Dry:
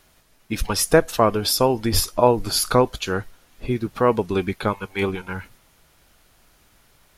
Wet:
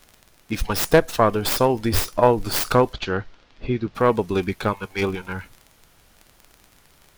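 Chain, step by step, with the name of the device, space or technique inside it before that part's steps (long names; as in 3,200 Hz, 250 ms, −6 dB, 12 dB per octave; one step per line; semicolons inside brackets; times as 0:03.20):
record under a worn stylus (stylus tracing distortion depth 0.23 ms; surface crackle 32 per second −31 dBFS; pink noise bed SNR 38 dB)
0:02.93–0:03.95: low-pass filter 5,000 Hz 24 dB per octave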